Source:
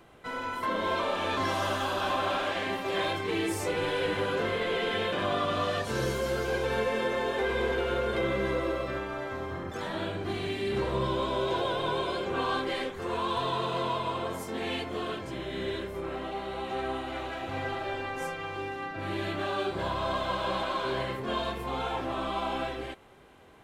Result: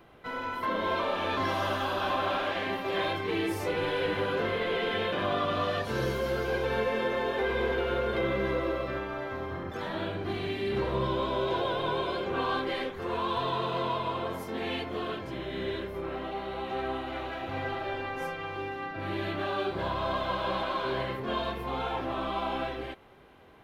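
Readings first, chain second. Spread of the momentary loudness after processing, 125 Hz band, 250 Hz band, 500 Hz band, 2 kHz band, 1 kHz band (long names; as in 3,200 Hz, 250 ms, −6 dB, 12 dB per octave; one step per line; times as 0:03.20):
7 LU, 0.0 dB, 0.0 dB, 0.0 dB, −0.5 dB, 0.0 dB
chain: parametric band 7,900 Hz −11.5 dB 0.78 octaves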